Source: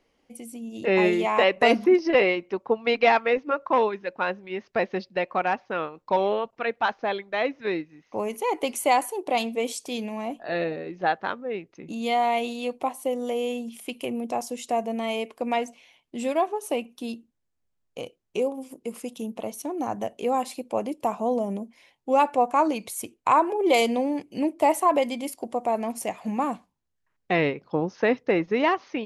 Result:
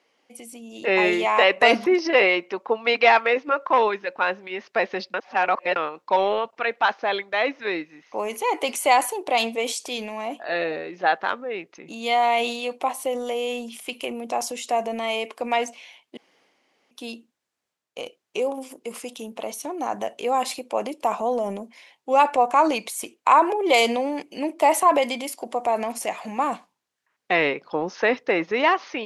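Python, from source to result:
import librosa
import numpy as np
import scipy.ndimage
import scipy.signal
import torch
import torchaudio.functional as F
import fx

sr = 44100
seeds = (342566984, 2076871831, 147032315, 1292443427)

y = fx.edit(x, sr, fx.reverse_span(start_s=5.14, length_s=0.62),
    fx.room_tone_fill(start_s=16.17, length_s=0.74), tone=tone)
y = fx.weighting(y, sr, curve='A')
y = fx.transient(y, sr, attack_db=0, sustain_db=5)
y = F.gain(torch.from_numpy(y), 4.0).numpy()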